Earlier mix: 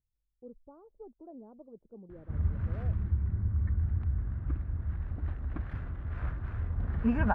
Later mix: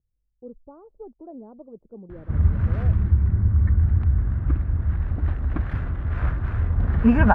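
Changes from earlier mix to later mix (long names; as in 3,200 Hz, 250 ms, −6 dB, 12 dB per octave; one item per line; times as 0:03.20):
speech +8.0 dB
background +11.0 dB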